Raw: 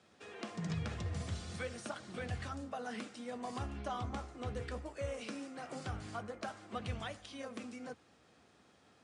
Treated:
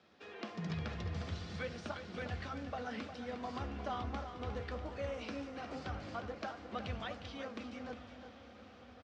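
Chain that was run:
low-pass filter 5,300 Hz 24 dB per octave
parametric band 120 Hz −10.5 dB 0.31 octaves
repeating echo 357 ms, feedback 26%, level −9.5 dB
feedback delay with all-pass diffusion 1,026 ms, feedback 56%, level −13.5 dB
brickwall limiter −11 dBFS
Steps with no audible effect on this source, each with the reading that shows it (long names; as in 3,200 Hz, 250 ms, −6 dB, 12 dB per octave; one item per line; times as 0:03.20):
brickwall limiter −11 dBFS: peak of its input −25.5 dBFS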